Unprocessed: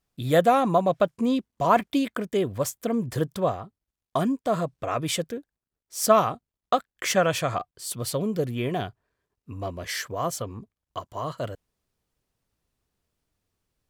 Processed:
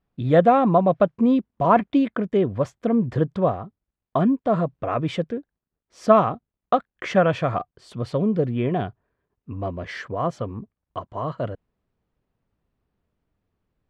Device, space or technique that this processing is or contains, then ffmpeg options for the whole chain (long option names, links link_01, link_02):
phone in a pocket: -af "lowpass=3300,equalizer=frequency=200:width_type=o:width=0.79:gain=3,highshelf=frequency=2200:gain=-9.5,volume=4dB"